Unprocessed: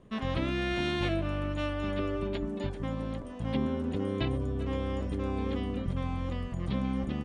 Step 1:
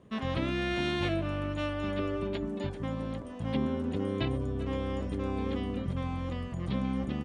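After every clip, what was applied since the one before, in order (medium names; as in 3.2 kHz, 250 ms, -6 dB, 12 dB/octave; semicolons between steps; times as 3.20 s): high-pass 60 Hz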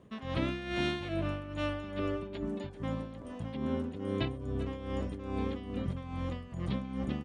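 tremolo 2.4 Hz, depth 69%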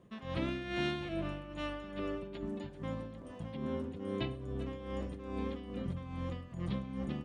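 simulated room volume 3200 m³, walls furnished, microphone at 0.85 m; trim -4 dB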